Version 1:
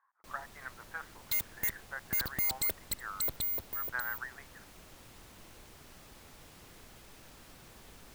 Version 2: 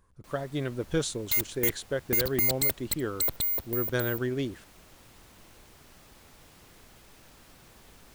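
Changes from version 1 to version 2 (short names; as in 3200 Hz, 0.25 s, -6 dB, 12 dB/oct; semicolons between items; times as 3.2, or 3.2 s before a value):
speech: remove Chebyshev band-pass 810–1900 Hz, order 3; second sound +5.5 dB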